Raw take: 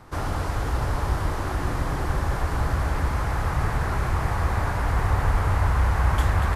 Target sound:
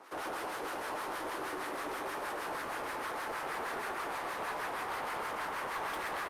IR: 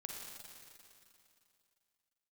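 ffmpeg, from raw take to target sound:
-filter_complex "[0:a]highpass=f=310:w=0.5412,highpass=f=310:w=1.3066,equalizer=f=2600:t=o:w=0.66:g=2.5,acrossover=split=1000[s0][s1];[s0]aeval=exprs='val(0)*(1-0.7/2+0.7/2*cos(2*PI*6.1*n/s))':c=same[s2];[s1]aeval=exprs='val(0)*(1-0.7/2-0.7/2*cos(2*PI*6.1*n/s))':c=same[s3];[s2][s3]amix=inputs=2:normalize=0,asoftclip=type=tanh:threshold=0.0211,aecho=1:1:137|250.7:0.447|0.251,asplit=2[s4][s5];[1:a]atrim=start_sample=2205,asetrate=74970,aresample=44100,adelay=79[s6];[s5][s6]afir=irnorm=-1:irlink=0,volume=0.126[s7];[s4][s7]amix=inputs=2:normalize=0,asetrate=45938,aresample=44100" -ar 48000 -c:a libopus -b:a 48k

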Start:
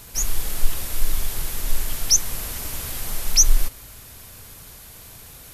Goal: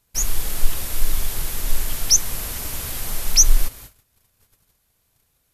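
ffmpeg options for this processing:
-af "agate=range=0.0501:threshold=0.0126:ratio=16:detection=peak,volume=1.19"

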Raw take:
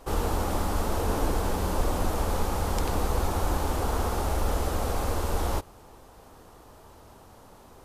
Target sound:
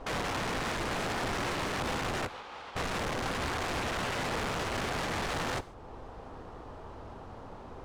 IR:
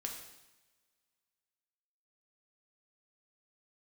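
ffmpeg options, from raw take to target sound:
-filter_complex "[0:a]alimiter=limit=0.0668:level=0:latency=1:release=465,asplit=3[s0][s1][s2];[s0]afade=t=out:st=2.26:d=0.02[s3];[s1]bandpass=f=3000:t=q:w=1.1:csg=0,afade=t=in:st=2.26:d=0.02,afade=t=out:st=2.75:d=0.02[s4];[s2]afade=t=in:st=2.75:d=0.02[s5];[s3][s4][s5]amix=inputs=3:normalize=0,aeval=exprs='(mod(39.8*val(0)+1,2)-1)/39.8':c=same,adynamicsmooth=sensitivity=5.5:basefreq=3100,asplit=2[s6][s7];[1:a]atrim=start_sample=2205,afade=t=out:st=0.21:d=0.01,atrim=end_sample=9702[s8];[s7][s8]afir=irnorm=-1:irlink=0,volume=0.335[s9];[s6][s9]amix=inputs=2:normalize=0,volume=1.58"

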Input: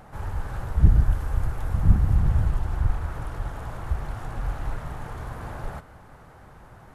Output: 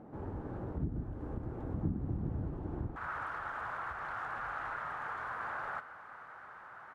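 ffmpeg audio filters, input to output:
-af "acompressor=threshold=0.0891:ratio=8,asetnsamples=n=441:p=0,asendcmd='2.96 bandpass f 1400',bandpass=f=300:t=q:w=2.3:csg=0,aecho=1:1:804:0.075,volume=2.11"

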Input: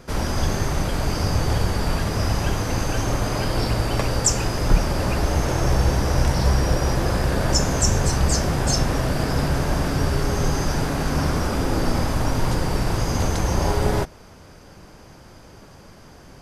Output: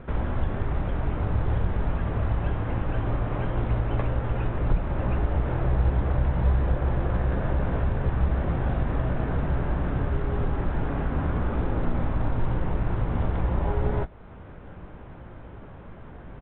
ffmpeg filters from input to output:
-filter_complex "[0:a]lowpass=2000,lowshelf=f=110:g=6.5,acompressor=threshold=0.0178:ratio=1.5,asplit=2[s0][s1];[s1]adelay=17,volume=0.316[s2];[s0][s2]amix=inputs=2:normalize=0" -ar 8000 -c:a pcm_alaw

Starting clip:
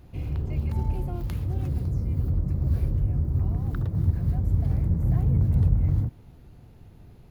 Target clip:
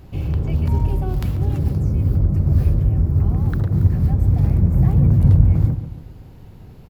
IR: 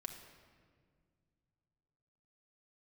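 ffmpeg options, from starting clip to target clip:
-filter_complex "[0:a]asetrate=46746,aresample=44100,asplit=2[s0][s1];[s1]adelay=140,lowpass=f=2000:p=1,volume=0.282,asplit=2[s2][s3];[s3]adelay=140,lowpass=f=2000:p=1,volume=0.46,asplit=2[s4][s5];[s5]adelay=140,lowpass=f=2000:p=1,volume=0.46,asplit=2[s6][s7];[s7]adelay=140,lowpass=f=2000:p=1,volume=0.46,asplit=2[s8][s9];[s9]adelay=140,lowpass=f=2000:p=1,volume=0.46[s10];[s0][s2][s4][s6][s8][s10]amix=inputs=6:normalize=0,volume=2.37"

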